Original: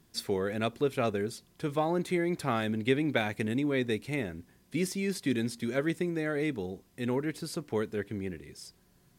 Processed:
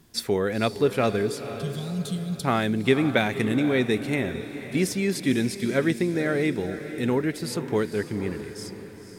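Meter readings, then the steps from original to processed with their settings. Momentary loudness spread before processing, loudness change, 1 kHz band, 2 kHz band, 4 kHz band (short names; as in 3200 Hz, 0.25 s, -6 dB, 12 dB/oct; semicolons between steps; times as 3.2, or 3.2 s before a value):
9 LU, +6.5 dB, +5.0 dB, +6.5 dB, +7.0 dB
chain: spectral gain 1.55–2.44, 230–2800 Hz -26 dB; diffused feedback echo 0.497 s, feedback 49%, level -11 dB; gain +6.5 dB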